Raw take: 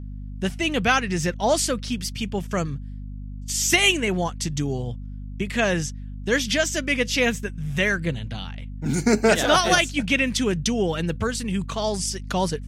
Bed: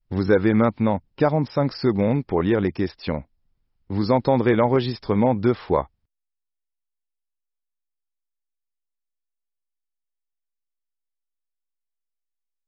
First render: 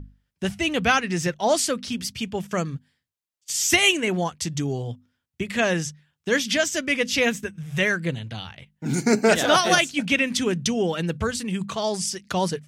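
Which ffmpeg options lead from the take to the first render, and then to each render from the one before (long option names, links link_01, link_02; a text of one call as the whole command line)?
ffmpeg -i in.wav -af "bandreject=frequency=50:width_type=h:width=6,bandreject=frequency=100:width_type=h:width=6,bandreject=frequency=150:width_type=h:width=6,bandreject=frequency=200:width_type=h:width=6,bandreject=frequency=250:width_type=h:width=6" out.wav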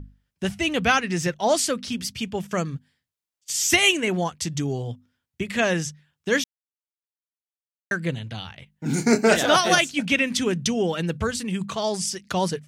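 ffmpeg -i in.wav -filter_complex "[0:a]asettb=1/sr,asplit=3[link_01][link_02][link_03];[link_01]atrim=end=8.844[link_04];[link_02]atrim=start=8.84:end=9.39,asetpts=PTS-STARTPTS,afade=type=in:duration=0.004:curve=qsin,afade=type=out:start_time=0.546:duration=0.004:curve=qsin,asplit=2[link_05][link_06];[link_06]adelay=26,volume=-7.5dB[link_07];[link_05][link_07]amix=inputs=2:normalize=0,atrim=end_sample=24255[link_08];[link_03]atrim=start=9.386[link_09];[link_04][link_08]acrossfade=duration=0.004:curve1=hsin:curve2=qsin[link_10];[link_10][link_09]acrossfade=duration=0.004:curve1=qsin:curve2=hsin,asplit=3[link_11][link_12][link_13];[link_11]atrim=end=6.44,asetpts=PTS-STARTPTS,afade=type=out:start_time=6.436:duration=0.004:curve=hsin[link_14];[link_12]atrim=start=6.44:end=7.91,asetpts=PTS-STARTPTS,volume=0[link_15];[link_13]atrim=start=7.91,asetpts=PTS-STARTPTS,afade=type=in:duration=0.004:curve=hsin[link_16];[link_14][link_15][link_16]concat=n=3:v=0:a=1" out.wav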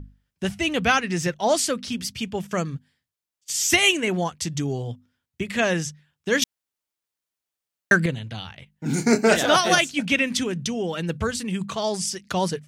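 ffmpeg -i in.wav -filter_complex "[0:a]asettb=1/sr,asplit=3[link_01][link_02][link_03];[link_01]atrim=end=10.434[link_04];[link_02]atrim=start=10.43:end=11.09,asetpts=PTS-STARTPTS,afade=type=in:duration=0.004:curve=qsin,afade=type=out:start_time=0.656:duration=0.004:curve=qsin,acompressor=threshold=-25dB:ratio=2:attack=3.2:release=140:knee=1:detection=peak[link_05];[link_03]atrim=start=11.086[link_06];[link_04][link_05]acrossfade=duration=0.004:curve1=hsin:curve2=qsin[link_07];[link_07][link_06]acrossfade=duration=0.004:curve1=qsin:curve2=hsin,asplit=3[link_08][link_09][link_10];[link_08]atrim=end=6.422[link_11];[link_09]atrim=start=6.418:end=8.062,asetpts=PTS-STARTPTS,volume=9dB[link_12];[link_10]atrim=start=8.058[link_13];[link_11][link_12]acrossfade=duration=0.004:curve1=hsin:curve2=hsin[link_14];[link_14][link_13]acrossfade=duration=0.004:curve1=hsin:curve2=hsin" out.wav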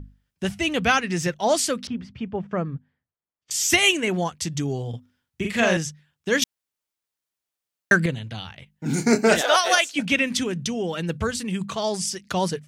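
ffmpeg -i in.wav -filter_complex "[0:a]asettb=1/sr,asplit=3[link_01][link_02][link_03];[link_01]atrim=end=1.874[link_04];[link_02]atrim=start=1.87:end=3.51,asetpts=PTS-STARTPTS,afade=type=in:duration=0.004:curve=qsin,afade=type=out:start_time=1.636:duration=0.004:curve=qsin,lowpass=1400[link_05];[link_03]atrim=start=3.506[link_06];[link_04][link_05]acrossfade=duration=0.004:curve1=hsin:curve2=qsin[link_07];[link_07][link_06]acrossfade=duration=0.004:curve1=qsin:curve2=hsin,asettb=1/sr,asplit=3[link_08][link_09][link_10];[link_08]atrim=end=4.894[link_11];[link_09]atrim=start=4.89:end=5.77,asetpts=PTS-STARTPTS,afade=type=in:duration=0.004:curve=qsin,afade=type=out:start_time=0.876:duration=0.004:curve=qsin,asplit=2[link_12][link_13];[link_13]adelay=43,volume=-2.5dB[link_14];[link_12][link_14]amix=inputs=2:normalize=0,atrim=end_sample=38808[link_15];[link_10]atrim=start=5.766[link_16];[link_11][link_15]acrossfade=duration=0.004:curve1=hsin:curve2=qsin[link_17];[link_17][link_16]acrossfade=duration=0.004:curve1=qsin:curve2=hsin,asettb=1/sr,asplit=3[link_18][link_19][link_20];[link_18]atrim=end=9.414[link_21];[link_19]atrim=start=9.41:end=9.96,asetpts=PTS-STARTPTS,afade=type=in:duration=0.004:curve=qsin,afade=type=out:start_time=0.546:duration=0.004:curve=qsin,highpass=frequency=450:width=0.5412,highpass=frequency=450:width=1.3066[link_22];[link_20]atrim=start=9.956[link_23];[link_21][link_22]acrossfade=duration=0.004:curve1=hsin:curve2=qsin[link_24];[link_24][link_23]acrossfade=duration=0.004:curve1=qsin:curve2=hsin" out.wav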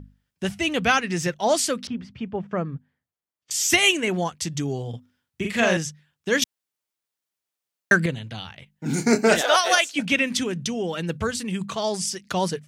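ffmpeg -i in.wav -af "lowshelf=frequency=63:gain=-8" out.wav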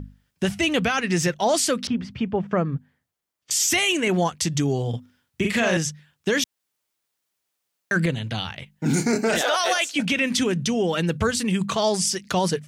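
ffmpeg -i in.wav -filter_complex "[0:a]asplit=2[link_01][link_02];[link_02]acompressor=threshold=-29dB:ratio=6,volume=2.5dB[link_03];[link_01][link_03]amix=inputs=2:normalize=0,alimiter=limit=-12.5dB:level=0:latency=1:release=14" out.wav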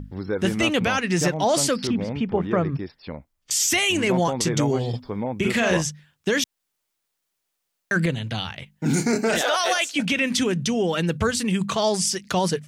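ffmpeg -i in.wav -i bed.wav -filter_complex "[1:a]volume=-9dB[link_01];[0:a][link_01]amix=inputs=2:normalize=0" out.wav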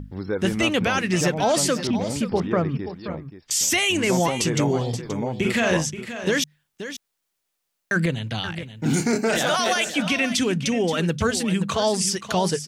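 ffmpeg -i in.wav -af "aecho=1:1:528:0.266" out.wav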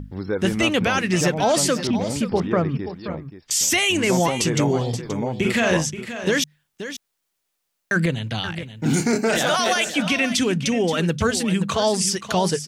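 ffmpeg -i in.wav -af "volume=1.5dB" out.wav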